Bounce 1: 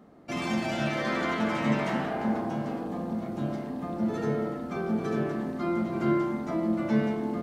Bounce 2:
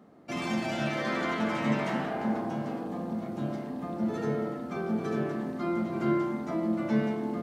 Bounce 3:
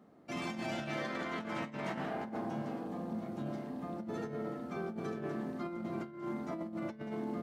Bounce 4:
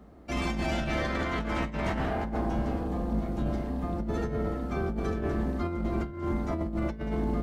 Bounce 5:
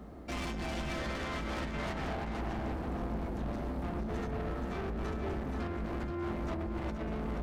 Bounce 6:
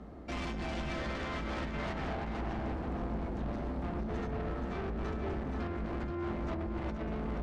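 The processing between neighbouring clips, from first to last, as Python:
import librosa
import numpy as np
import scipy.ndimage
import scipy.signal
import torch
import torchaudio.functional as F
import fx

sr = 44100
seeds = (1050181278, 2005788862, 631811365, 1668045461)

y1 = scipy.signal.sosfilt(scipy.signal.butter(2, 86.0, 'highpass', fs=sr, output='sos'), x)
y1 = y1 * 10.0 ** (-1.5 / 20.0)
y2 = fx.over_compress(y1, sr, threshold_db=-31.0, ratio=-0.5)
y2 = y2 * 10.0 ** (-7.0 / 20.0)
y3 = fx.octave_divider(y2, sr, octaves=2, level_db=2.0)
y3 = y3 * 10.0 ** (7.0 / 20.0)
y4 = fx.rider(y3, sr, range_db=10, speed_s=0.5)
y4 = 10.0 ** (-35.5 / 20.0) * np.tanh(y4 / 10.0 ** (-35.5 / 20.0))
y4 = y4 + 10.0 ** (-6.5 / 20.0) * np.pad(y4, (int(477 * sr / 1000.0), 0))[:len(y4)]
y4 = y4 * 10.0 ** (1.0 / 20.0)
y5 = fx.air_absorb(y4, sr, metres=69.0)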